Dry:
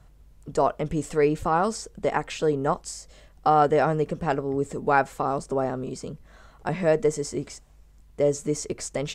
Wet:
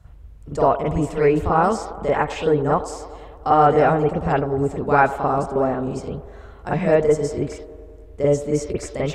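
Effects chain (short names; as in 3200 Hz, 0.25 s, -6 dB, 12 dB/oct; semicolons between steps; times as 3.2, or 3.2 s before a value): bell 77 Hz +14 dB 0.63 oct; band-limited delay 99 ms, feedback 73%, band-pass 630 Hz, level -14 dB; reverb, pre-delay 42 ms, DRR -6 dB; gain -2.5 dB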